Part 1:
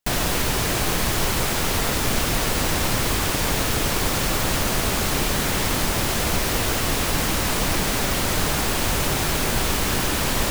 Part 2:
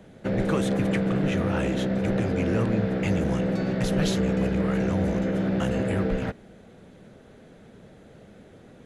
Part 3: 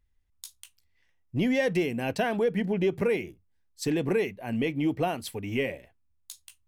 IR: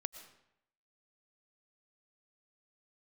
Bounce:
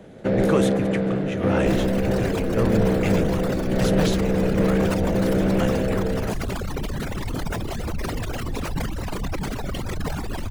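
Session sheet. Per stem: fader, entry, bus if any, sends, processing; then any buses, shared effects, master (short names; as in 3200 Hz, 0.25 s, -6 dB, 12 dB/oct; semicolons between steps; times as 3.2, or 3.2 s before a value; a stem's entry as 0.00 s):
-3.0 dB, 1.60 s, no send, formant sharpening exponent 2; reverb removal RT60 0.89 s
+2.5 dB, 0.00 s, no send, bell 470 Hz +4.5 dB 1.6 oct; random-step tremolo
-6.0 dB, 0.00 s, no send, limiter -23.5 dBFS, peak gain reduction 8 dB; sustainer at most 110 dB/s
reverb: off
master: sustainer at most 23 dB/s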